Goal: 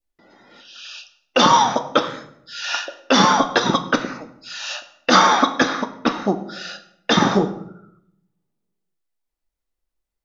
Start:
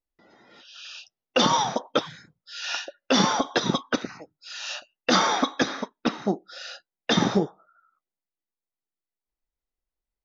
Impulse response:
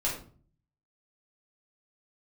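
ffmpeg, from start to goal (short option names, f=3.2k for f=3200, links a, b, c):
-filter_complex "[0:a]adynamicequalizer=threshold=0.0126:dfrequency=1200:dqfactor=1.2:tfrequency=1200:tqfactor=1.2:attack=5:release=100:ratio=0.375:range=3:mode=boostabove:tftype=bell,asplit=2[a][b];[1:a]atrim=start_sample=2205,asetrate=22932,aresample=44100[c];[b][c]afir=irnorm=-1:irlink=0,volume=-19dB[d];[a][d]amix=inputs=2:normalize=0,volume=3dB"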